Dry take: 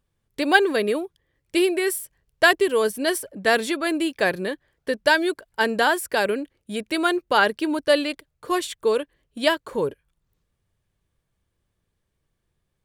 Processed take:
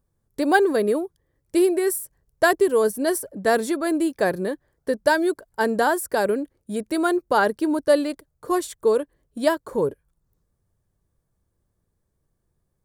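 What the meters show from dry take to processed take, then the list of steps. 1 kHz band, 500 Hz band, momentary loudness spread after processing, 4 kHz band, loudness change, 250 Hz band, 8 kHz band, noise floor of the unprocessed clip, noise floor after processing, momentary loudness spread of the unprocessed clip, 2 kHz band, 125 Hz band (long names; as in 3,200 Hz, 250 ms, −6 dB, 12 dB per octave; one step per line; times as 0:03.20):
0.0 dB, +1.5 dB, 10 LU, −8.5 dB, 0.0 dB, +2.0 dB, +0.5 dB, −76 dBFS, −74 dBFS, 12 LU, −4.5 dB, +2.5 dB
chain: parametric band 2,800 Hz −15 dB 1.4 octaves
level +2.5 dB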